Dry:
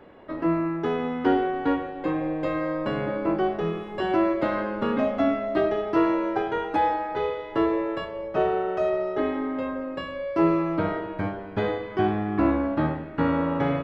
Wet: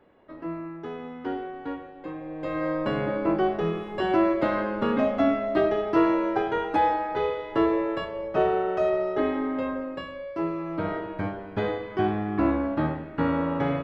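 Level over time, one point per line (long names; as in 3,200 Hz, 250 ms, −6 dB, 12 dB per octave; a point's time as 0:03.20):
0:02.25 −10 dB
0:02.66 +0.5 dB
0:09.73 +0.5 dB
0:10.53 −9 dB
0:10.94 −1.5 dB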